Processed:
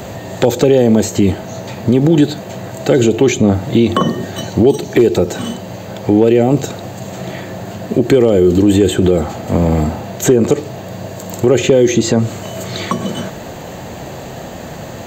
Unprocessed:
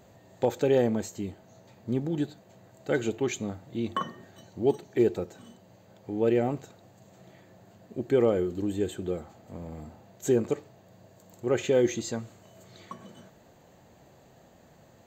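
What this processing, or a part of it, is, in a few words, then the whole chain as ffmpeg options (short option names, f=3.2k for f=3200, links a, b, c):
mastering chain: -filter_complex "[0:a]equalizer=f=2.8k:t=o:w=0.77:g=2,acrossover=split=300|740|3000[a][b][c][d];[a]acompressor=threshold=-33dB:ratio=4[e];[b]acompressor=threshold=-29dB:ratio=4[f];[c]acompressor=threshold=-51dB:ratio=4[g];[d]acompressor=threshold=-49dB:ratio=4[h];[e][f][g][h]amix=inputs=4:normalize=0,acompressor=threshold=-35dB:ratio=1.5,asoftclip=type=hard:threshold=-24dB,alimiter=level_in=29dB:limit=-1dB:release=50:level=0:latency=1,volume=-1dB"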